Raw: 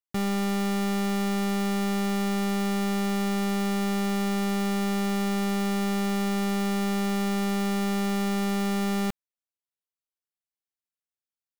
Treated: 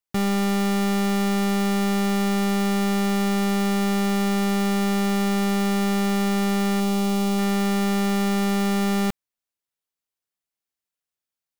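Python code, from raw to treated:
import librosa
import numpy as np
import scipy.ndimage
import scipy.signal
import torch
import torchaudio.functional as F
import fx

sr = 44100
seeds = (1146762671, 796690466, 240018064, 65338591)

y = fx.peak_eq(x, sr, hz=1700.0, db=-12.0, octaves=0.45, at=(6.8, 7.39))
y = y * librosa.db_to_amplitude(4.5)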